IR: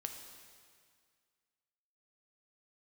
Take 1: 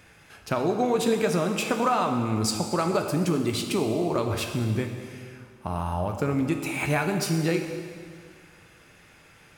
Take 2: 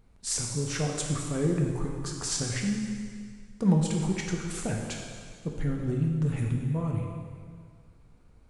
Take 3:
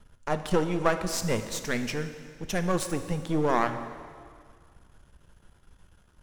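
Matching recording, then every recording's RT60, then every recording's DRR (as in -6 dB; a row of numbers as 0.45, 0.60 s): 1; 2.0, 2.0, 2.0 s; 4.0, 0.0, 8.5 dB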